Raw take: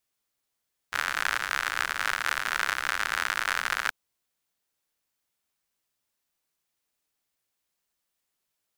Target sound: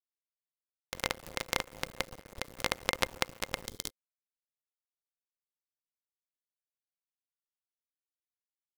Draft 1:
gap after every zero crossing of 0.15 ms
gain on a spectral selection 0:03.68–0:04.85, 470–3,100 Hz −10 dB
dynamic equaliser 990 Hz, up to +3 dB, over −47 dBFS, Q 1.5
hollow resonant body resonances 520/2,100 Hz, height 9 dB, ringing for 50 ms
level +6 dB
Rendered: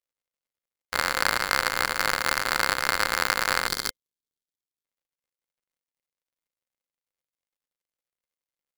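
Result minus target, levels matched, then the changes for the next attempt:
gap after every zero crossing: distortion −14 dB
change: gap after every zero crossing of 0.48 ms

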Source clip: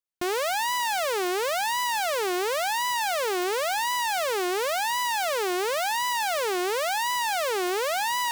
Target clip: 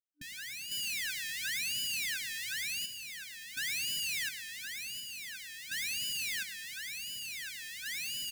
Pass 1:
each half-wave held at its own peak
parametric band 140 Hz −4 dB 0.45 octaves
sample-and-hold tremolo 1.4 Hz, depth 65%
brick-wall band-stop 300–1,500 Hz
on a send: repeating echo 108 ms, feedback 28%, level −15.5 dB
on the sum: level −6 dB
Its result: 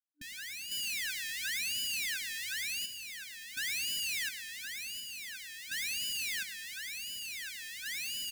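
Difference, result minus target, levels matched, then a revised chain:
125 Hz band −4.0 dB
each half-wave held at its own peak
parametric band 140 Hz +4.5 dB 0.45 octaves
sample-and-hold tremolo 1.4 Hz, depth 65%
brick-wall band-stop 300–1,500 Hz
on a send: repeating echo 108 ms, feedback 28%, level −15.5 dB
on the sum: level −6 dB

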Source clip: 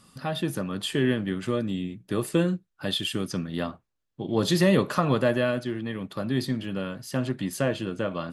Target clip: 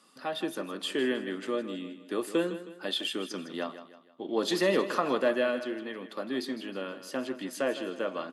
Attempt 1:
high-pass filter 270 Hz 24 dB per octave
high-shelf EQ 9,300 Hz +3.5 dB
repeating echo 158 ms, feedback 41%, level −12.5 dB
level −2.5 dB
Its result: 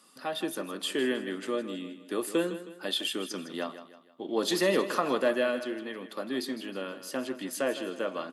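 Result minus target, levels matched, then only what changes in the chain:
8,000 Hz band +4.5 dB
change: high-shelf EQ 9,300 Hz −8 dB

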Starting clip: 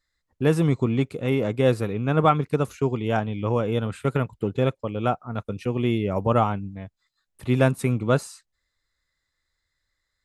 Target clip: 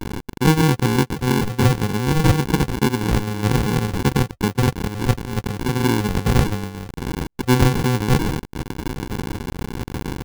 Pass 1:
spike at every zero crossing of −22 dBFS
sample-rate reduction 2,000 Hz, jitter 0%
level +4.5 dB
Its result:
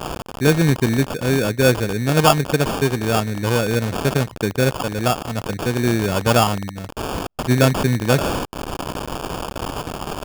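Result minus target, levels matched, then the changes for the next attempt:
sample-rate reduction: distortion −12 dB
change: sample-rate reduction 630 Hz, jitter 0%

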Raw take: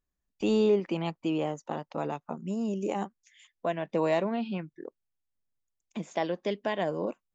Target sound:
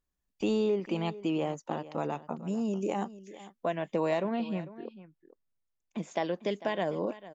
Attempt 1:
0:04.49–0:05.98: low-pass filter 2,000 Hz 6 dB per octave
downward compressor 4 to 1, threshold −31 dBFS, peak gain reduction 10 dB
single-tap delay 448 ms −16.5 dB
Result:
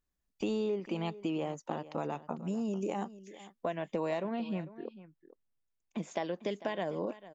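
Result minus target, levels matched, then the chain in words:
downward compressor: peak gain reduction +5 dB
0:04.49–0:05.98: low-pass filter 2,000 Hz 6 dB per octave
downward compressor 4 to 1, threshold −24.5 dBFS, peak gain reduction 5 dB
single-tap delay 448 ms −16.5 dB

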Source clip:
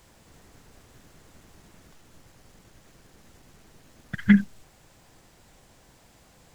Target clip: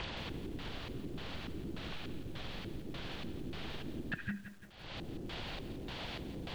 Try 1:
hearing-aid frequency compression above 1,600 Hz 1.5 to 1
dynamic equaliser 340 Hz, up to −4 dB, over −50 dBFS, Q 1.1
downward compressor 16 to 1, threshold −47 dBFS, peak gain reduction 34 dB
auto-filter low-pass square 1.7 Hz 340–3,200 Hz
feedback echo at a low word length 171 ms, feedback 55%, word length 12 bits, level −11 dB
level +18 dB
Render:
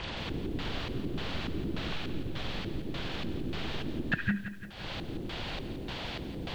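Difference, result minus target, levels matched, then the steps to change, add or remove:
downward compressor: peak gain reduction −10 dB
change: downward compressor 16 to 1, threshold −57.5 dBFS, peak gain reduction 44 dB

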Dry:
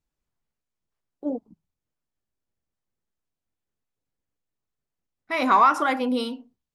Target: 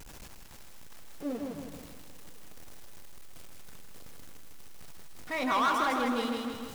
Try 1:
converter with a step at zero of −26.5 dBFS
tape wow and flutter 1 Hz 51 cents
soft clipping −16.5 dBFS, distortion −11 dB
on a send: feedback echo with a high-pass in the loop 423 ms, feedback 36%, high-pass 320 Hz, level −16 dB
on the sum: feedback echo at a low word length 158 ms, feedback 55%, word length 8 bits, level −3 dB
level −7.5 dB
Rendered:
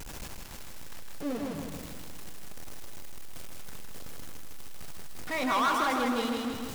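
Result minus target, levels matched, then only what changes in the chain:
converter with a step at zero: distortion +6 dB
change: converter with a step at zero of −33 dBFS

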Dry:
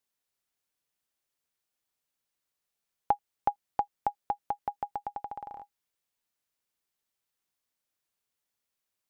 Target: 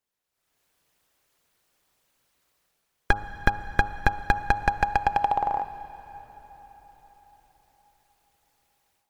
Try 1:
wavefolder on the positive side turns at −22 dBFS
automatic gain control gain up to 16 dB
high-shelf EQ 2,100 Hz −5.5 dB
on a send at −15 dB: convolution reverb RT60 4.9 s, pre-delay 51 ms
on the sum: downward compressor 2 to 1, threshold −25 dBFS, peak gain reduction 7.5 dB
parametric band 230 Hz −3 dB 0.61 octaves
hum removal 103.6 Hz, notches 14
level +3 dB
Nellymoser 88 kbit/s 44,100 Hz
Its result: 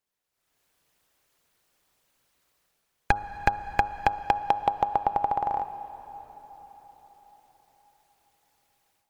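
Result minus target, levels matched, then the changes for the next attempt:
wavefolder on the positive side: distortion −10 dB; downward compressor: peak gain reduction +2.5 dB
change: wavefolder on the positive side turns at −30 dBFS
change: downward compressor 2 to 1, threshold −19 dBFS, peak gain reduction 5 dB

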